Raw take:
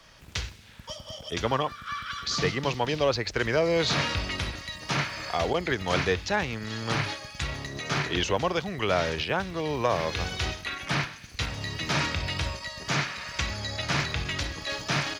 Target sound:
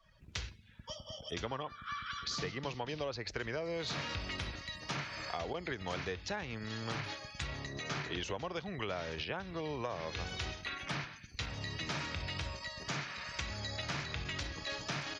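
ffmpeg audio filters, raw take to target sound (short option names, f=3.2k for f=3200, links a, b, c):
-af "afftdn=nr=18:nf=-50,acompressor=threshold=-29dB:ratio=6,volume=-6dB"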